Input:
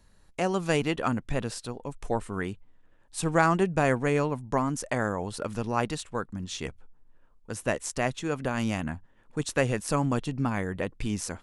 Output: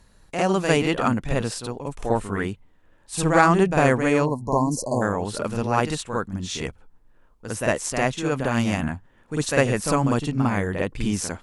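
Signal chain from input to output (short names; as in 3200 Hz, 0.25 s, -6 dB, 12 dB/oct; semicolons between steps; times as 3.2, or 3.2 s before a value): reverse echo 52 ms -6 dB; added harmonics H 3 -29 dB, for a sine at -7 dBFS; spectral delete 4.25–5.02, 1100–4000 Hz; gain +6 dB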